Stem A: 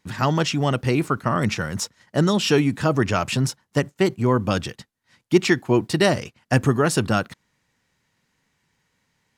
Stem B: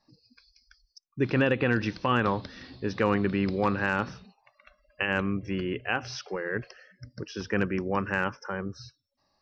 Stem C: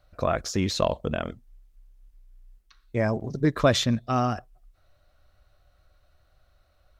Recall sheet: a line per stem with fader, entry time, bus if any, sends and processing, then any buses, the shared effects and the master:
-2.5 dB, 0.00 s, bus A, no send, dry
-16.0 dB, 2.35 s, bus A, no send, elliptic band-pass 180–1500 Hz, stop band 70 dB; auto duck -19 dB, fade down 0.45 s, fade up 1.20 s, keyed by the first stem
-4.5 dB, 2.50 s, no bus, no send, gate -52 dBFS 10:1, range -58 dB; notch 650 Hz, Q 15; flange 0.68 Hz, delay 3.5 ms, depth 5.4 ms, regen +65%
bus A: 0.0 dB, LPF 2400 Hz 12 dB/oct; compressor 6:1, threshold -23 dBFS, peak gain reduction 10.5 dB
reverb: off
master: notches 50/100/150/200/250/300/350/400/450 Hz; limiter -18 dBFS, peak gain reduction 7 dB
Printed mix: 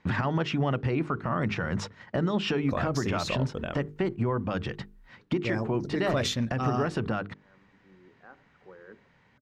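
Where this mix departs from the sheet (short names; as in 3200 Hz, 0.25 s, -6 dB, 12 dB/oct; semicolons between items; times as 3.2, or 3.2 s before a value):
stem A -2.5 dB -> +8.5 dB; stem C: missing flange 0.68 Hz, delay 3.5 ms, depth 5.4 ms, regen +65%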